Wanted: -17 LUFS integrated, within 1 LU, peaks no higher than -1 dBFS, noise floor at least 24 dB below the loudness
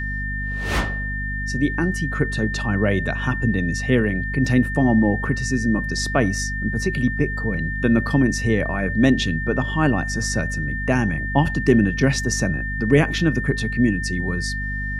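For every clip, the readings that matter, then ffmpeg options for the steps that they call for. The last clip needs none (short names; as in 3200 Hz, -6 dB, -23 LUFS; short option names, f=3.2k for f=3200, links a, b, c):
hum 50 Hz; harmonics up to 250 Hz; hum level -25 dBFS; steady tone 1800 Hz; tone level -27 dBFS; loudness -21.0 LUFS; peak -3.0 dBFS; loudness target -17.0 LUFS
-> -af "bandreject=f=50:t=h:w=6,bandreject=f=100:t=h:w=6,bandreject=f=150:t=h:w=6,bandreject=f=200:t=h:w=6,bandreject=f=250:t=h:w=6"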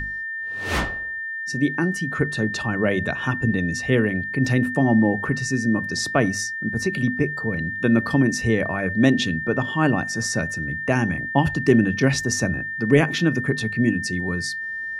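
hum none; steady tone 1800 Hz; tone level -27 dBFS
-> -af "bandreject=f=1.8k:w=30"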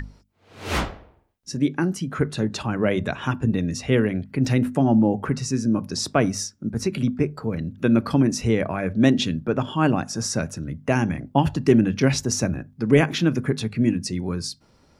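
steady tone none; loudness -23.0 LUFS; peak -4.0 dBFS; loudness target -17.0 LUFS
-> -af "volume=6dB,alimiter=limit=-1dB:level=0:latency=1"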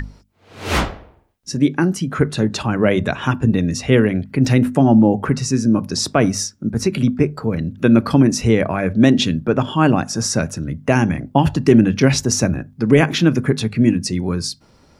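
loudness -17.0 LUFS; peak -1.0 dBFS; noise floor -52 dBFS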